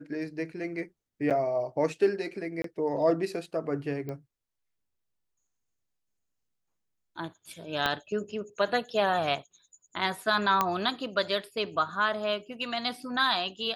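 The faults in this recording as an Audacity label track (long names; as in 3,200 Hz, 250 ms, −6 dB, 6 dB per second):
1.300000	1.310000	drop-out 7.5 ms
2.620000	2.640000	drop-out 23 ms
4.090000	4.090000	click −25 dBFS
7.860000	7.860000	click −13 dBFS
10.610000	10.610000	click −10 dBFS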